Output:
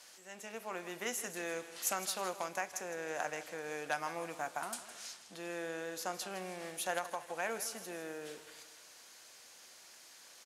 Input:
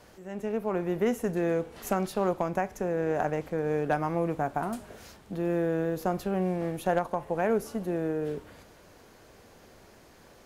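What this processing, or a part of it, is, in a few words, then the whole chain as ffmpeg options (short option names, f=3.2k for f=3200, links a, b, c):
piezo pickup straight into a mixer: -filter_complex "[0:a]asettb=1/sr,asplit=3[a][b][c];[a]atrim=end=4.744[d];[b]atrim=start=4.74:end=6.34,asetpts=PTS-STARTPTS,afade=t=in:d=0.004:c=qsin,afade=t=out:st=1.596:d=0.004:c=qsin,lowpass=11k[e];[c]atrim=start=6.336[f];[d][e]acrossfade=d=0.004:c1=hsin:c2=qsin[g];[g][f]acrossfade=d=0.004:c1=qsin:c2=hsin,lowpass=8.3k,aderivative,bandreject=f=420:w=13,aecho=1:1:161|322|483|644:0.2|0.0918|0.0422|0.0194,volume=10dB"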